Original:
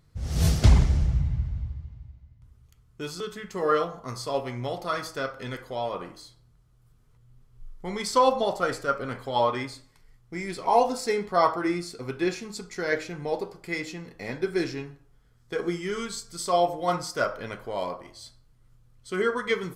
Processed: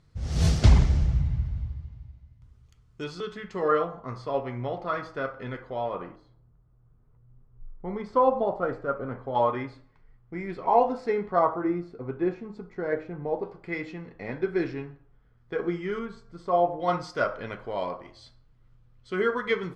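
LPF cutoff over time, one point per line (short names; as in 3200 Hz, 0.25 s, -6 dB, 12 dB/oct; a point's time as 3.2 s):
7000 Hz
from 3.04 s 3700 Hz
from 3.68 s 2100 Hz
from 6.16 s 1100 Hz
from 9.35 s 1800 Hz
from 11.39 s 1100 Hz
from 13.43 s 2200 Hz
from 15.99 s 1300 Hz
from 16.8 s 3400 Hz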